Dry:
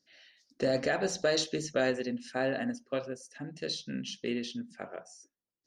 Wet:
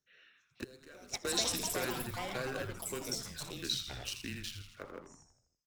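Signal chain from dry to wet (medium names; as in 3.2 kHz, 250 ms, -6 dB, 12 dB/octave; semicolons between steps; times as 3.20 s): local Wiener filter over 9 samples; compression 3:1, threshold -31 dBFS, peak gain reduction 6 dB; RIAA curve recording; frequency-shifting echo 81 ms, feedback 55%, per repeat -120 Hz, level -8.5 dB; frequency shift -140 Hz; ever faster or slower copies 505 ms, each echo +6 st, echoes 3; 0.64–1.25 s: gate -28 dBFS, range -17 dB; trim -3.5 dB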